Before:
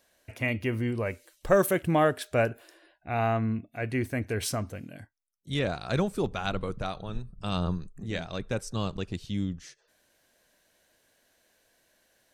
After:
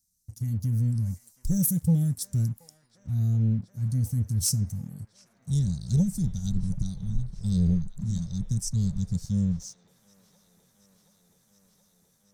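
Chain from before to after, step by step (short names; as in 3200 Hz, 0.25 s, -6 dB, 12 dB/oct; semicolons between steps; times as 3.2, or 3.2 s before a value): elliptic band-stop 180–5700 Hz, stop band 40 dB; sample leveller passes 1; AGC gain up to 6 dB; band-limited delay 0.725 s, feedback 81%, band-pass 1400 Hz, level -11 dB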